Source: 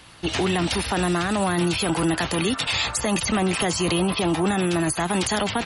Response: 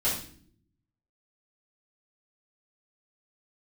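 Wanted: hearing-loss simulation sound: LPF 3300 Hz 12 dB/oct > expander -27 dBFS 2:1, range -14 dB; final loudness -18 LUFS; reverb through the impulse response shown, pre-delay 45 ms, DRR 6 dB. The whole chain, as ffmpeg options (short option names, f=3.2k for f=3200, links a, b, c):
-filter_complex "[0:a]asplit=2[a][b];[1:a]atrim=start_sample=2205,adelay=45[c];[b][c]afir=irnorm=-1:irlink=0,volume=-15dB[d];[a][d]amix=inputs=2:normalize=0,lowpass=3.3k,agate=range=-14dB:threshold=-27dB:ratio=2,volume=4dB"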